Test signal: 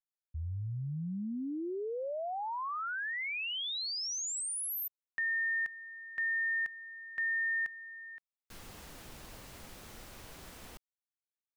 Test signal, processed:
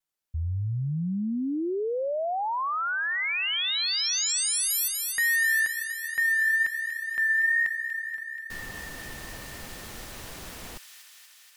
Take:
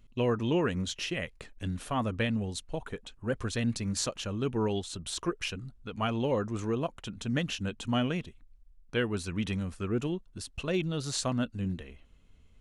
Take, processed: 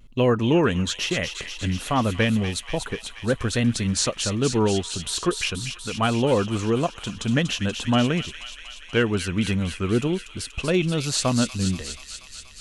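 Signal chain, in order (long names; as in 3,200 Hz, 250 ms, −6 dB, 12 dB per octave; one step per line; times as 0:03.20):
pitch vibrato 1.2 Hz 40 cents
delay with a high-pass on its return 240 ms, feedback 75%, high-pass 2,400 Hz, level −5.5 dB
level +8.5 dB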